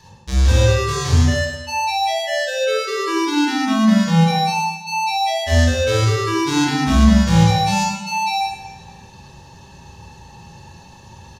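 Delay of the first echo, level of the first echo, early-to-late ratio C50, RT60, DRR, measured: 0.101 s, -6.5 dB, -1.0 dB, 1.0 s, -3.5 dB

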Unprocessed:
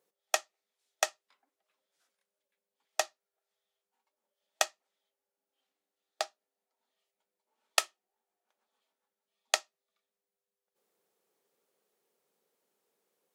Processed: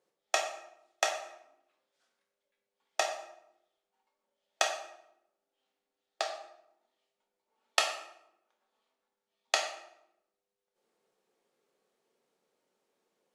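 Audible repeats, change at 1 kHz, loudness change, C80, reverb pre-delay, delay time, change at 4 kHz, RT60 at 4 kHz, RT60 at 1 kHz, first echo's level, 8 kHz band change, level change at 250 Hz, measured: none, +3.0 dB, 0.0 dB, 8.5 dB, 6 ms, none, +1.5 dB, 0.55 s, 0.75 s, none, -2.0 dB, +4.0 dB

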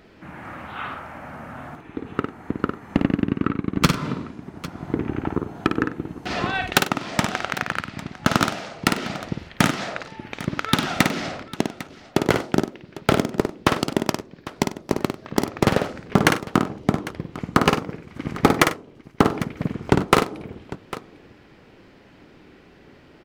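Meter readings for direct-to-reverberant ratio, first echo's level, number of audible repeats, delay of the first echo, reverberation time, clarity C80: none, -6.0 dB, 3, 53 ms, none, none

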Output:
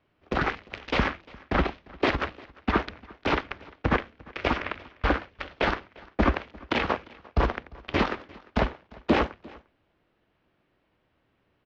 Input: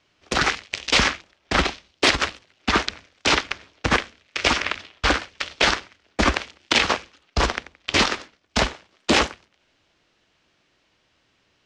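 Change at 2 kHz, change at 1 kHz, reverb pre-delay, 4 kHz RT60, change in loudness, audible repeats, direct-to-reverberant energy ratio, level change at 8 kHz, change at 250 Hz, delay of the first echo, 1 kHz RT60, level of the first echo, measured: -8.0 dB, -4.5 dB, none, none, -6.5 dB, 1, none, under -25 dB, -1.0 dB, 0.349 s, none, -23.5 dB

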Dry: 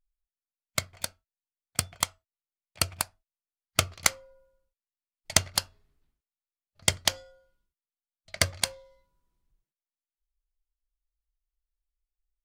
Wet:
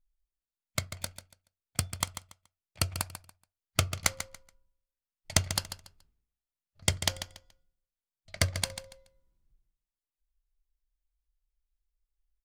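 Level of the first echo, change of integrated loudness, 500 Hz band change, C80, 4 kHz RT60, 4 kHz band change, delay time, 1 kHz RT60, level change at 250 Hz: -11.0 dB, -3.5 dB, -3.0 dB, none, none, -4.0 dB, 0.142 s, none, +0.5 dB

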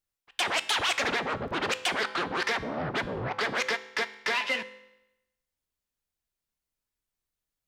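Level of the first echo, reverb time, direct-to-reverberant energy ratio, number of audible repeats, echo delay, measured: none, 0.90 s, 11.5 dB, none, none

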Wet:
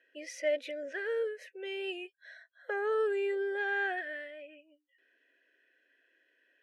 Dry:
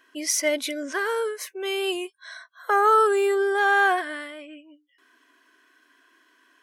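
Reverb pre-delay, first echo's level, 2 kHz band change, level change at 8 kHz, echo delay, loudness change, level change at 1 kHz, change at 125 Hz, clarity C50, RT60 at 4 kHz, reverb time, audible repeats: none, none, -10.5 dB, under -20 dB, none, -11.5 dB, -19.5 dB, n/a, none, none, none, none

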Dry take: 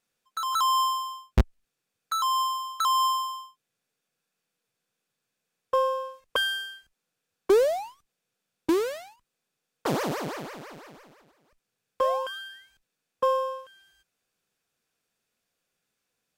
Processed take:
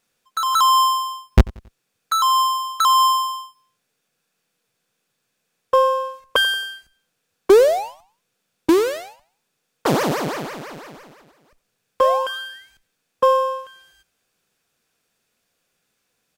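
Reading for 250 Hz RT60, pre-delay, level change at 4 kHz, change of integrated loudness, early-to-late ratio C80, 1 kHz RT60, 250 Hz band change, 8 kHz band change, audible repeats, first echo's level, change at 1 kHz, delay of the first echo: none, none, +8.5 dB, +8.5 dB, none, none, +8.5 dB, +8.5 dB, 2, -22.0 dB, +8.5 dB, 91 ms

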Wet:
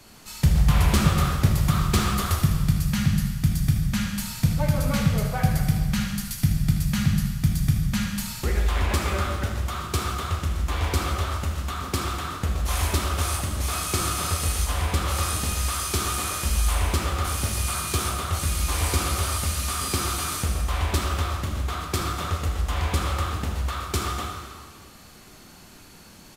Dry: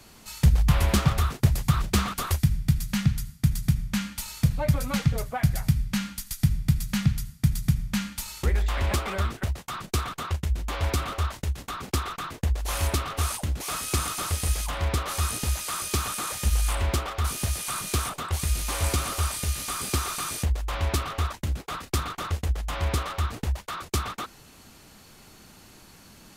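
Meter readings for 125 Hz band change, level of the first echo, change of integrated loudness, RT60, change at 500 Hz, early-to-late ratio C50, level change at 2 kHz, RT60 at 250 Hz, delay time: +2.0 dB, -10.5 dB, +2.5 dB, 1.8 s, +2.0 dB, 2.5 dB, +3.0 dB, 1.8 s, 78 ms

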